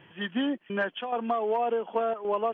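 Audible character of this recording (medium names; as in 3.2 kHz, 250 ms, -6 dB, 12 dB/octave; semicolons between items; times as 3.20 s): chopped level 0.89 Hz, depth 60%, duty 90%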